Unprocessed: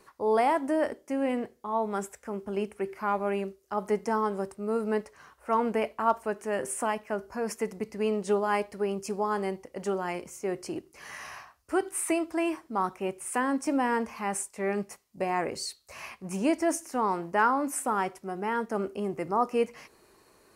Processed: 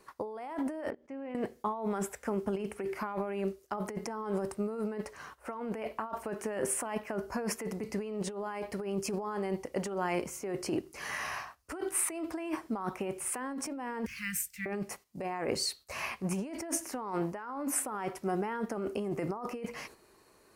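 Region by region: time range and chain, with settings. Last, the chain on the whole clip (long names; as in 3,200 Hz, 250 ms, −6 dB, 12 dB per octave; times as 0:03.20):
0:00.90–0:01.35: mains-hum notches 60/120/180/240/300 Hz + output level in coarse steps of 23 dB + low-pass filter 2,800 Hz
0:14.06–0:14.66: inverse Chebyshev band-stop filter 350–770 Hz, stop band 60 dB + parametric band 810 Hz −11 dB 1.2 octaves + linearly interpolated sample-rate reduction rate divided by 2×
whole clip: dynamic equaliser 7,500 Hz, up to −5 dB, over −52 dBFS, Q 0.91; noise gate −55 dBFS, range −8 dB; compressor whose output falls as the input rises −35 dBFS, ratio −1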